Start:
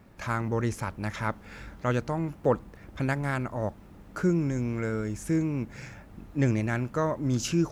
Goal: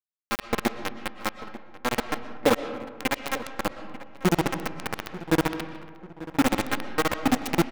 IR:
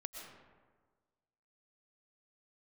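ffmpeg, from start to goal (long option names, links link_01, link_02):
-filter_complex "[0:a]highpass=100,aecho=1:1:3.8:0.84,tremolo=f=15:d=0.8,acrusher=bits=3:mix=0:aa=0.000001,asplit=2[link_01][link_02];[link_02]adelay=890,lowpass=frequency=2300:poles=1,volume=-16dB,asplit=2[link_03][link_04];[link_04]adelay=890,lowpass=frequency=2300:poles=1,volume=0.45,asplit=2[link_05][link_06];[link_06]adelay=890,lowpass=frequency=2300:poles=1,volume=0.45,asplit=2[link_07][link_08];[link_08]adelay=890,lowpass=frequency=2300:poles=1,volume=0.45[link_09];[link_01][link_03][link_05][link_07][link_09]amix=inputs=5:normalize=0,asplit=2[link_10][link_11];[1:a]atrim=start_sample=2205,lowpass=4100[link_12];[link_11][link_12]afir=irnorm=-1:irlink=0,volume=-0.5dB[link_13];[link_10][link_13]amix=inputs=2:normalize=0"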